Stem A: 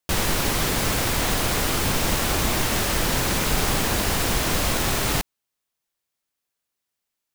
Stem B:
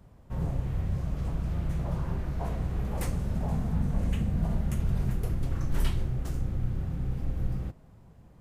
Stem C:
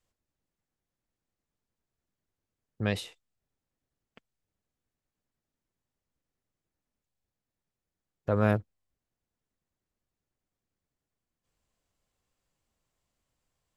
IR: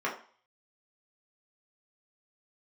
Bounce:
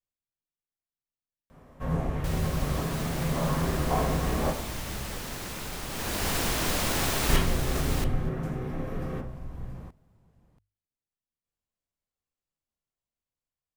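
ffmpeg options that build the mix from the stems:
-filter_complex "[0:a]adelay=2150,volume=-9dB,afade=type=in:start_time=5.88:duration=0.42:silence=0.316228,asplit=2[link_01][link_02];[link_02]volume=-6.5dB[link_03];[1:a]adelay=1500,volume=-0.5dB,asplit=3[link_04][link_05][link_06];[link_04]atrim=end=4.51,asetpts=PTS-STARTPTS,afade=type=out:start_time=4.506:duration=0.004:curve=hsin[link_07];[link_05]atrim=start=4.51:end=7.29,asetpts=PTS-STARTPTS,volume=0[link_08];[link_06]atrim=start=7.29,asetpts=PTS-STARTPTS,afade=type=in:duration=0.004:curve=hsin[link_09];[link_07][link_08][link_09]concat=n=3:v=0:a=1,asplit=3[link_10][link_11][link_12];[link_11]volume=-3.5dB[link_13];[link_12]volume=-12dB[link_14];[2:a]alimiter=limit=-18.5dB:level=0:latency=1,volume=-17.5dB,asplit=2[link_15][link_16];[link_16]apad=whole_len=436813[link_17];[link_10][link_17]sidechaincompress=threshold=-50dB:ratio=8:attack=8:release=1180[link_18];[3:a]atrim=start_sample=2205[link_19];[link_13][link_19]afir=irnorm=-1:irlink=0[link_20];[link_03][link_14]amix=inputs=2:normalize=0,aecho=0:1:679:1[link_21];[link_01][link_18][link_15][link_20][link_21]amix=inputs=5:normalize=0,bandreject=frequency=50:width_type=h:width=6,bandreject=frequency=100:width_type=h:width=6,dynaudnorm=framelen=860:gausssize=5:maxgain=4dB"

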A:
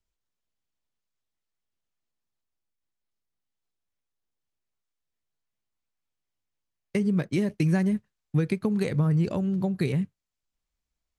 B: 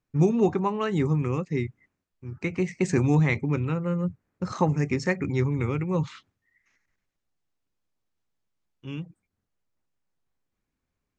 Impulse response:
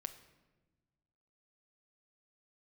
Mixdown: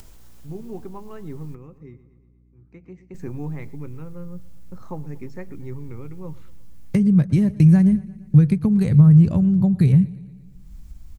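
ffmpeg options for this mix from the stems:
-filter_complex "[0:a]asubboost=boost=8.5:cutoff=130,acompressor=mode=upward:threshold=-19dB:ratio=2.5,volume=3dB,asplit=3[link_01][link_02][link_03];[link_01]atrim=end=1.55,asetpts=PTS-STARTPTS,afade=type=out:start_time=1.546:duration=0.004:curve=hsin[link_04];[link_02]atrim=start=1.55:end=3.14,asetpts=PTS-STARTPTS,volume=0[link_05];[link_03]atrim=start=3.14,asetpts=PTS-STARTPTS,afade=type=in:duration=0.004:curve=hsin[link_06];[link_04][link_05][link_06]concat=n=3:v=0:a=1,asplit=3[link_07][link_08][link_09];[link_08]volume=-21dB[link_10];[1:a]highshelf=frequency=4600:gain=-11,adelay=300,volume=-9.5dB,asplit=2[link_11][link_12];[link_12]volume=-21dB[link_13];[link_09]apad=whole_len=506355[link_14];[link_11][link_14]sidechaingate=range=-6dB:threshold=-40dB:ratio=16:detection=peak[link_15];[link_10][link_13]amix=inputs=2:normalize=0,aecho=0:1:117|234|351|468|585|702|819|936|1053|1170:1|0.6|0.36|0.216|0.13|0.0778|0.0467|0.028|0.0168|0.0101[link_16];[link_07][link_15][link_16]amix=inputs=3:normalize=0,equalizer=frequency=3000:width=0.44:gain=-7,aeval=exprs='val(0)+0.00178*(sin(2*PI*60*n/s)+sin(2*PI*2*60*n/s)/2+sin(2*PI*3*60*n/s)/3+sin(2*PI*4*60*n/s)/4+sin(2*PI*5*60*n/s)/5)':channel_layout=same"

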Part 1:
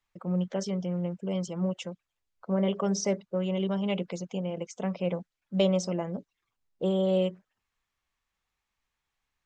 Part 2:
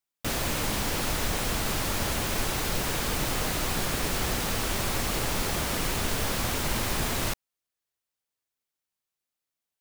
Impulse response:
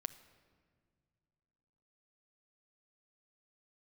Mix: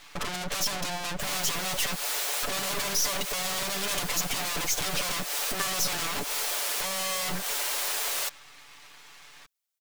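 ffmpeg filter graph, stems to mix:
-filter_complex "[0:a]asplit=2[link_01][link_02];[link_02]highpass=frequency=720:poles=1,volume=37dB,asoftclip=type=tanh:threshold=-12.5dB[link_03];[link_01][link_03]amix=inputs=2:normalize=0,lowpass=frequency=2400:poles=1,volume=-6dB,aeval=exprs='max(val(0),0)':channel_layout=same,aeval=exprs='0.2*(cos(1*acos(clip(val(0)/0.2,-1,1)))-cos(1*PI/2))+0.0562*(cos(4*acos(clip(val(0)/0.2,-1,1)))-cos(4*PI/2))+0.0708*(cos(5*acos(clip(val(0)/0.2,-1,1)))-cos(5*PI/2))+0.0178*(cos(8*acos(clip(val(0)/0.2,-1,1)))-cos(8*PI/2))':channel_layout=same,volume=-2.5dB,asplit=2[link_04][link_05];[1:a]highpass=frequency=460:width=0.5412,highpass=frequency=460:width=1.3066,adelay=950,volume=-5.5dB[link_06];[link_05]apad=whole_len=474193[link_07];[link_06][link_07]sidechaincompress=threshold=-40dB:ratio=3:attack=10:release=139[link_08];[link_04][link_08]amix=inputs=2:normalize=0,highshelf=frequency=2500:gain=8.5,aecho=1:1:6.9:0.51"

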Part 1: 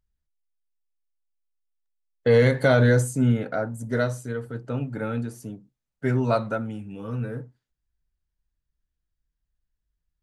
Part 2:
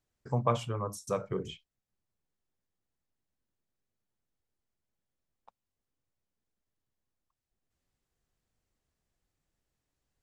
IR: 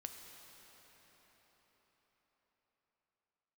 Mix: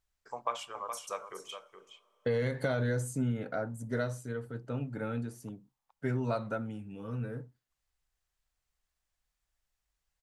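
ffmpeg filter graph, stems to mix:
-filter_complex "[0:a]volume=-7dB[link_01];[1:a]highpass=840,volume=-0.5dB,asplit=3[link_02][link_03][link_04];[link_03]volume=-15dB[link_05];[link_04]volume=-8.5dB[link_06];[2:a]atrim=start_sample=2205[link_07];[link_05][link_07]afir=irnorm=-1:irlink=0[link_08];[link_06]aecho=0:1:419:1[link_09];[link_01][link_02][link_08][link_09]amix=inputs=4:normalize=0,acompressor=threshold=-27dB:ratio=6"

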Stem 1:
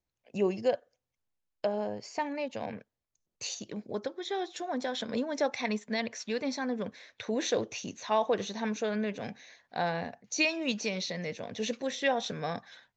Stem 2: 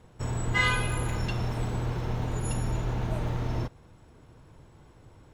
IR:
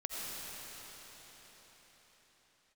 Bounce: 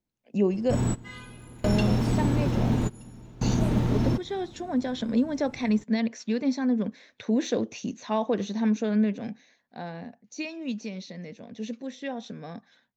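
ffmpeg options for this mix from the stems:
-filter_complex "[0:a]deesser=0.65,volume=-2dB,afade=type=out:start_time=9.04:duration=0.52:silence=0.421697,asplit=2[link_01][link_02];[1:a]adynamicequalizer=threshold=0.00447:dfrequency=2600:dqfactor=0.7:tfrequency=2600:tqfactor=0.7:attack=5:release=100:ratio=0.375:range=2.5:mode=boostabove:tftype=highshelf,adelay=500,volume=1dB[link_03];[link_02]apad=whole_len=257343[link_04];[link_03][link_04]sidechaingate=range=-22dB:threshold=-54dB:ratio=16:detection=peak[link_05];[link_01][link_05]amix=inputs=2:normalize=0,equalizer=frequency=230:width_type=o:width=1.2:gain=13"

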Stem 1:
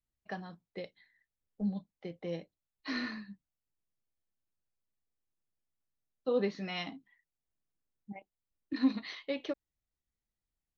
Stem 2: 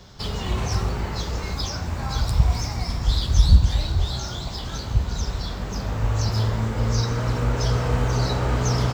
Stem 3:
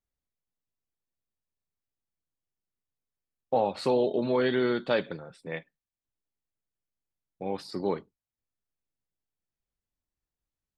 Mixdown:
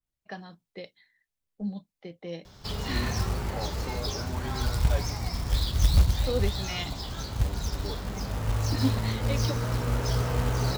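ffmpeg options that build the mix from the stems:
ffmpeg -i stem1.wav -i stem2.wav -i stem3.wav -filter_complex "[0:a]adynamicequalizer=threshold=0.00224:dfrequency=2400:dqfactor=0.7:tfrequency=2400:tqfactor=0.7:attack=5:release=100:ratio=0.375:range=3:mode=boostabove:tftype=highshelf,volume=0.5dB[link_01];[1:a]acontrast=31,acrusher=bits=4:mode=log:mix=0:aa=0.000001,adelay=2450,volume=-10dB[link_02];[2:a]aecho=1:1:6.9:0.97,volume=-13.5dB[link_03];[link_01][link_02][link_03]amix=inputs=3:normalize=0" out.wav

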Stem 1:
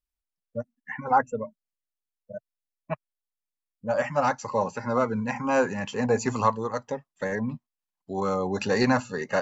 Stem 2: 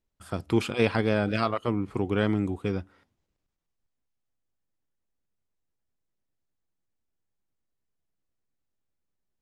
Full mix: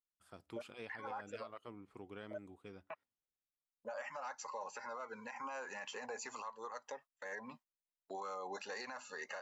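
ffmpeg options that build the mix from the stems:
ffmpeg -i stem1.wav -i stem2.wav -filter_complex "[0:a]agate=range=-25dB:threshold=-41dB:ratio=16:detection=peak,highpass=730,acompressor=threshold=-39dB:ratio=2.5,volume=0.5dB[link_01];[1:a]lowshelf=frequency=250:gain=-11.5,volume=-19.5dB[link_02];[link_01][link_02]amix=inputs=2:normalize=0,alimiter=level_in=11.5dB:limit=-24dB:level=0:latency=1:release=124,volume=-11.5dB" out.wav

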